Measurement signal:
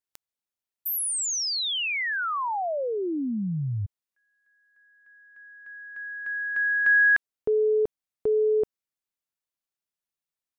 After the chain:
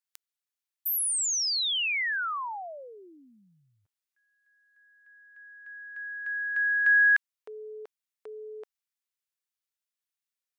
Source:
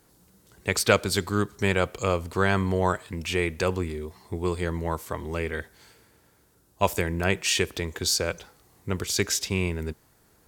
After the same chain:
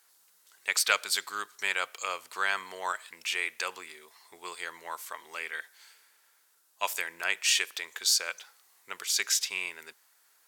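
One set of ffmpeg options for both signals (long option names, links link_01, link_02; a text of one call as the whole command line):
ffmpeg -i in.wav -af "highpass=1300" out.wav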